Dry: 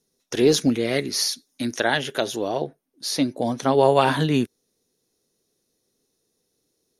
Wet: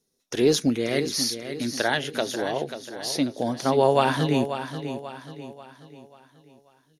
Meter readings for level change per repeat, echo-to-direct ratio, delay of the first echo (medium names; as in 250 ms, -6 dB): -7.5 dB, -9.0 dB, 538 ms